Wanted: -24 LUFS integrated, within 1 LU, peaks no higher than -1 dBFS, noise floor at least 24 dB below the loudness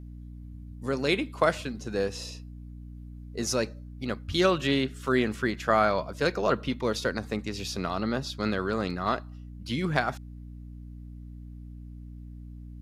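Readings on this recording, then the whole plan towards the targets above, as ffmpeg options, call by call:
hum 60 Hz; harmonics up to 300 Hz; hum level -40 dBFS; loudness -28.5 LUFS; peak -8.0 dBFS; loudness target -24.0 LUFS
-> -af "bandreject=f=60:t=h:w=6,bandreject=f=120:t=h:w=6,bandreject=f=180:t=h:w=6,bandreject=f=240:t=h:w=6,bandreject=f=300:t=h:w=6"
-af "volume=4.5dB"

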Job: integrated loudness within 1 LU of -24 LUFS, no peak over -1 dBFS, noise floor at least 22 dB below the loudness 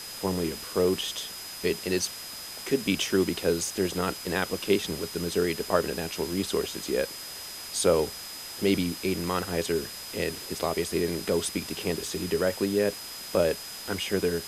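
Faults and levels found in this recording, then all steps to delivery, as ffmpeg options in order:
steady tone 5000 Hz; tone level -41 dBFS; noise floor -40 dBFS; noise floor target -51 dBFS; loudness -28.5 LUFS; peak -7.5 dBFS; loudness target -24.0 LUFS
-> -af "bandreject=f=5k:w=30"
-af "afftdn=nr=11:nf=-40"
-af "volume=4.5dB"

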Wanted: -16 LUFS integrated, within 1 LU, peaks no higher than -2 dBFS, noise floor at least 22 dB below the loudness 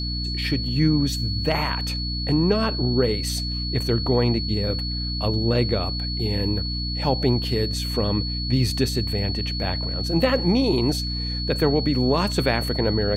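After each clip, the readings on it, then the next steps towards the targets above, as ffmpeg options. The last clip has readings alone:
hum 60 Hz; harmonics up to 300 Hz; hum level -26 dBFS; steady tone 4400 Hz; tone level -29 dBFS; loudness -23.0 LUFS; peak -6.5 dBFS; loudness target -16.0 LUFS
-> -af "bandreject=f=60:t=h:w=6,bandreject=f=120:t=h:w=6,bandreject=f=180:t=h:w=6,bandreject=f=240:t=h:w=6,bandreject=f=300:t=h:w=6"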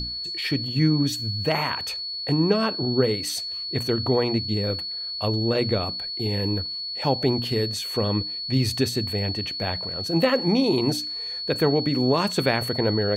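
hum none; steady tone 4400 Hz; tone level -29 dBFS
-> -af "bandreject=f=4.4k:w=30"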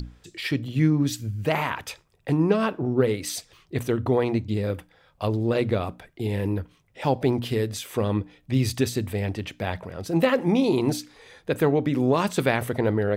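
steady tone none; loudness -25.5 LUFS; peak -7.5 dBFS; loudness target -16.0 LUFS
-> -af "volume=9.5dB,alimiter=limit=-2dB:level=0:latency=1"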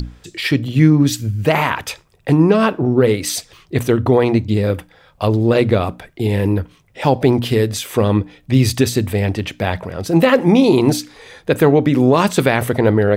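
loudness -16.0 LUFS; peak -2.0 dBFS; noise floor -52 dBFS

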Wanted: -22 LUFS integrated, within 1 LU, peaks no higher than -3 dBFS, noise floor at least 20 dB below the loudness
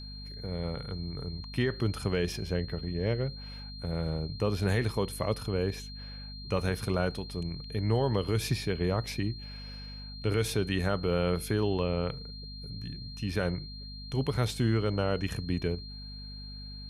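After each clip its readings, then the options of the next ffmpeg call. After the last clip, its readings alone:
hum 50 Hz; harmonics up to 250 Hz; hum level -42 dBFS; steady tone 4200 Hz; tone level -45 dBFS; loudness -32.0 LUFS; peak -16.0 dBFS; loudness target -22.0 LUFS
-> -af "bandreject=f=50:t=h:w=4,bandreject=f=100:t=h:w=4,bandreject=f=150:t=h:w=4,bandreject=f=200:t=h:w=4,bandreject=f=250:t=h:w=4"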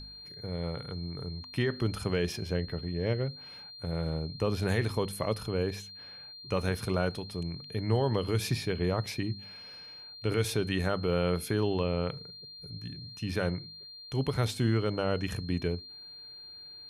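hum none; steady tone 4200 Hz; tone level -45 dBFS
-> -af "bandreject=f=4.2k:w=30"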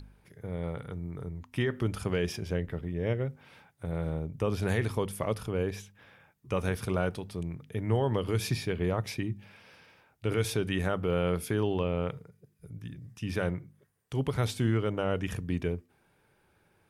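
steady tone none; loudness -32.0 LUFS; peak -15.5 dBFS; loudness target -22.0 LUFS
-> -af "volume=10dB"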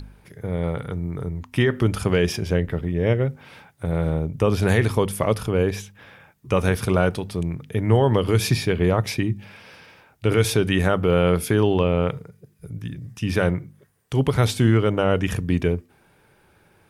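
loudness -22.0 LUFS; peak -5.5 dBFS; noise floor -59 dBFS

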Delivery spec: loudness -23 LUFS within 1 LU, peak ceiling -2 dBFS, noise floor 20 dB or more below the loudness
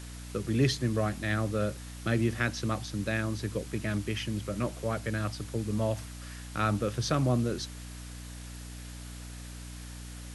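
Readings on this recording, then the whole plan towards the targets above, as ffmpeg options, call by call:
hum 60 Hz; harmonics up to 300 Hz; hum level -42 dBFS; noise floor -43 dBFS; noise floor target -52 dBFS; loudness -31.5 LUFS; peak -14.5 dBFS; loudness target -23.0 LUFS
-> -af "bandreject=f=60:t=h:w=6,bandreject=f=120:t=h:w=6,bandreject=f=180:t=h:w=6,bandreject=f=240:t=h:w=6,bandreject=f=300:t=h:w=6"
-af "afftdn=nr=9:nf=-43"
-af "volume=8.5dB"

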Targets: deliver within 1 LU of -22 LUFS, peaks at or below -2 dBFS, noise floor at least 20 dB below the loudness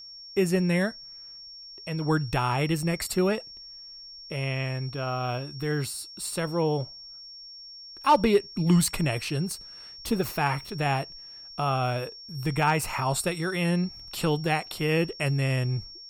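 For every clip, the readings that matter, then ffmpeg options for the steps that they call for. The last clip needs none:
steady tone 5500 Hz; tone level -42 dBFS; loudness -27.0 LUFS; peak -11.5 dBFS; loudness target -22.0 LUFS
-> -af "bandreject=f=5.5k:w=30"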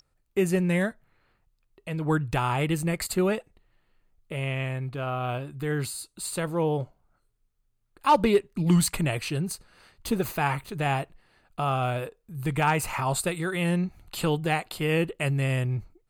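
steady tone none; loudness -27.5 LUFS; peak -11.5 dBFS; loudness target -22.0 LUFS
-> -af "volume=5.5dB"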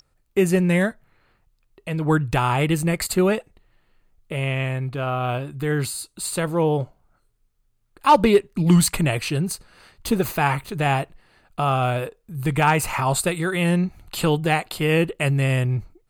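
loudness -22.0 LUFS; peak -6.0 dBFS; noise floor -66 dBFS

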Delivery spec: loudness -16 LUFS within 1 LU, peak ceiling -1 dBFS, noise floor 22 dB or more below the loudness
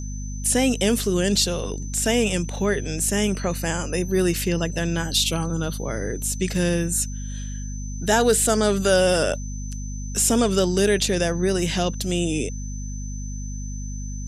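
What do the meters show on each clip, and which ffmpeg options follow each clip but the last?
hum 50 Hz; harmonics up to 250 Hz; hum level -28 dBFS; steady tone 6100 Hz; tone level -40 dBFS; loudness -22.0 LUFS; peak -4.0 dBFS; loudness target -16.0 LUFS
-> -af "bandreject=f=50:t=h:w=4,bandreject=f=100:t=h:w=4,bandreject=f=150:t=h:w=4,bandreject=f=200:t=h:w=4,bandreject=f=250:t=h:w=4"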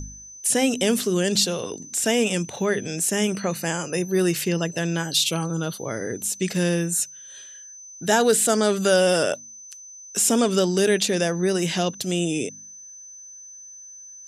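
hum none; steady tone 6100 Hz; tone level -40 dBFS
-> -af "bandreject=f=6.1k:w=30"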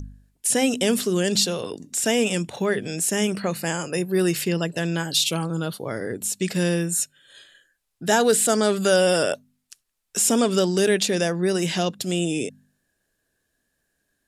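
steady tone none; loudness -22.5 LUFS; peak -5.0 dBFS; loudness target -16.0 LUFS
-> -af "volume=6.5dB,alimiter=limit=-1dB:level=0:latency=1"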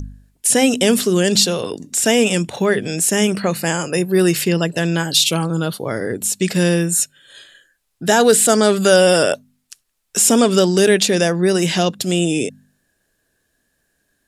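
loudness -16.0 LUFS; peak -1.0 dBFS; noise floor -69 dBFS

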